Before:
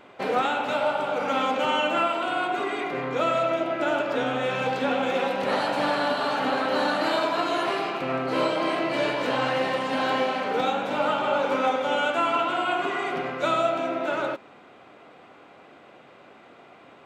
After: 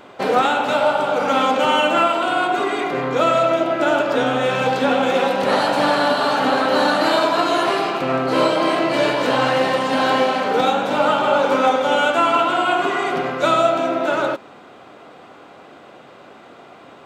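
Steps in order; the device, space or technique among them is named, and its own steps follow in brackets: exciter from parts (in parallel at -6.5 dB: high-pass 2.1 kHz 24 dB/octave + saturation -33.5 dBFS, distortion -13 dB); on the sum: trim +7.5 dB

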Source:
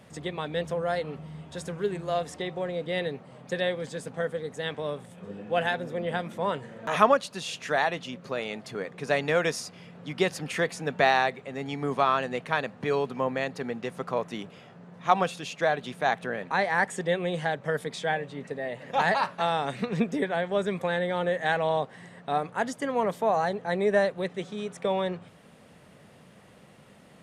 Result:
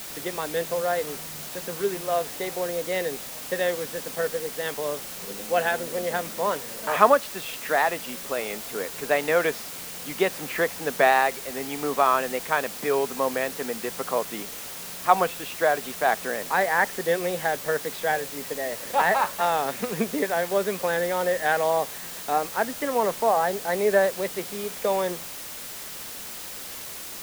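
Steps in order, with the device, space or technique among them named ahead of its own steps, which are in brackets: wax cylinder (band-pass 270–2700 Hz; wow and flutter; white noise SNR 11 dB); trim +3.5 dB

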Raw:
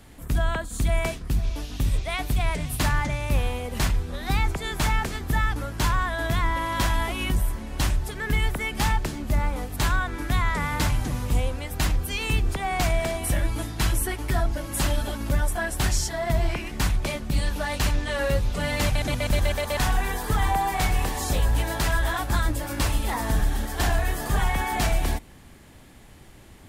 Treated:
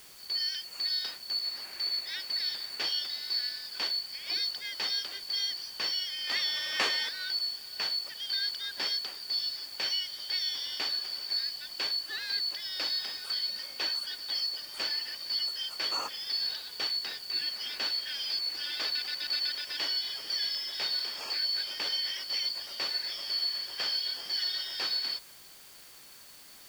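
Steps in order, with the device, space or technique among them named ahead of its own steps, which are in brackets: 6.27–7.09 s: treble shelf 2.2 kHz +12 dB; split-band scrambled radio (four frequency bands reordered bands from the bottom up 4321; band-pass 300–3200 Hz; white noise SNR 19 dB); trim -3.5 dB

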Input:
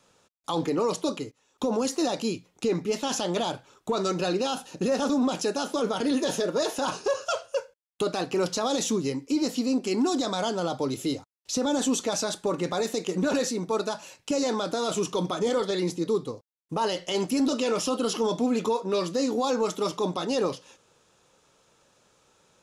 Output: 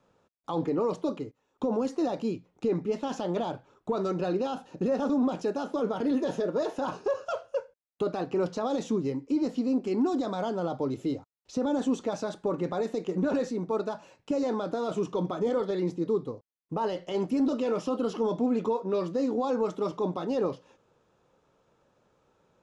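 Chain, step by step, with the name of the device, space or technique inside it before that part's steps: through cloth (low-pass 8.6 kHz 12 dB/octave; treble shelf 2.3 kHz -17.5 dB); trim -1 dB

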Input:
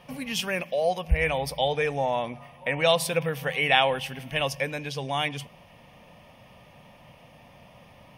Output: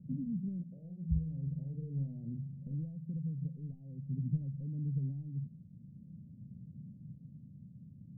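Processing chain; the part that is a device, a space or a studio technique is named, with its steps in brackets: AM radio (band-pass 140–3300 Hz; compression 5:1, threshold -33 dBFS, peak gain reduction 15.5 dB; saturation -22.5 dBFS, distortion -25 dB; tremolo 0.45 Hz, depth 32%); inverse Chebyshev band-stop 1–7.4 kHz, stop band 80 dB; 0.68–2.75 s: doubling 44 ms -5.5 dB; trim +11.5 dB

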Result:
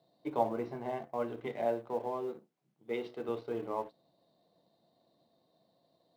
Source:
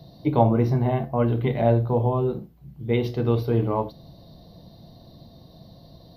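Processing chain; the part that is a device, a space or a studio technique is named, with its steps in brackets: phone line with mismatched companding (band-pass 360–3300 Hz; companding laws mixed up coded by A); 1.65–3.29 s: high-pass 140 Hz; trim -9 dB

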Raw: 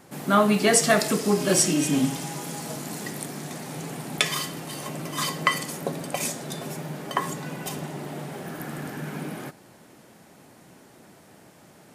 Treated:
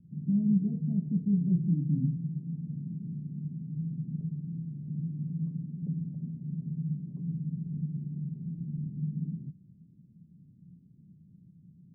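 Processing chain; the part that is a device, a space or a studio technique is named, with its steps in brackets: the neighbour's flat through the wall (low-pass 180 Hz 24 dB/octave; peaking EQ 170 Hz +7 dB 0.52 oct)

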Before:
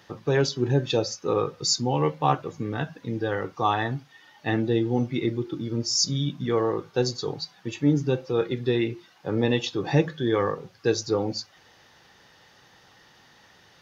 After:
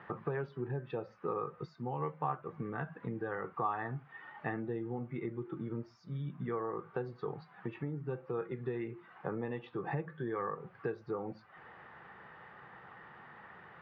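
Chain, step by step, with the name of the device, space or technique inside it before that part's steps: bass amplifier (compression 5:1, threshold -38 dBFS, peak gain reduction 20 dB; cabinet simulation 79–2000 Hz, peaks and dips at 100 Hz -8 dB, 280 Hz -9 dB, 560 Hz -4 dB, 1.2 kHz +5 dB); trim +4 dB

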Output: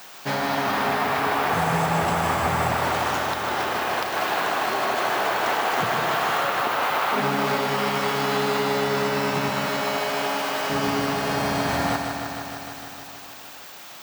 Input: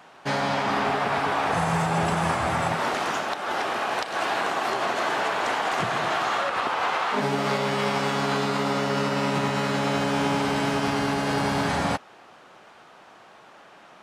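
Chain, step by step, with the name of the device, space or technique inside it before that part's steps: 9.66–10.70 s: high-pass 430 Hz 12 dB/octave; budget class-D amplifier (dead-time distortion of 0.054 ms; zero-crossing glitches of -29 dBFS); bit-crushed delay 153 ms, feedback 80%, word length 9-bit, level -6.5 dB

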